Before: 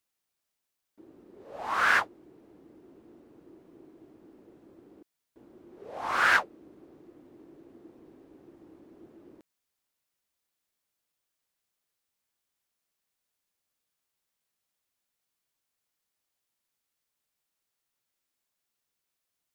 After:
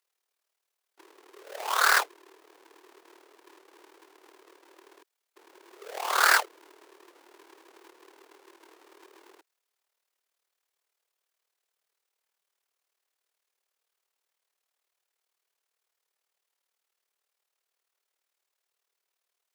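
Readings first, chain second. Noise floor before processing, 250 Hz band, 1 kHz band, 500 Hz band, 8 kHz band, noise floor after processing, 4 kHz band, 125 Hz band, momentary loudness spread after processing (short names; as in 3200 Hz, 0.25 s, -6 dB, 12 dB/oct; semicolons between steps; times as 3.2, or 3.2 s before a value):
-84 dBFS, -7.5 dB, +2.0 dB, +2.0 dB, +13.0 dB, -85 dBFS, +7.0 dB, under -35 dB, 18 LU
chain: half-waves squared off; AM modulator 38 Hz, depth 55%; elliptic high-pass 390 Hz, stop band 80 dB; gain +2 dB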